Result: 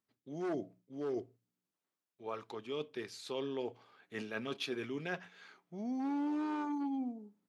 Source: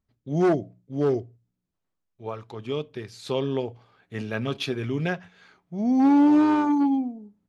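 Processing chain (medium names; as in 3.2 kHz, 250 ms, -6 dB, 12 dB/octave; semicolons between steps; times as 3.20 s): high-pass 280 Hz 12 dB/octave; peaking EQ 620 Hz -3.5 dB 0.94 oct; reverse; compression 4:1, threshold -34 dBFS, peak gain reduction 13.5 dB; reverse; trim -2 dB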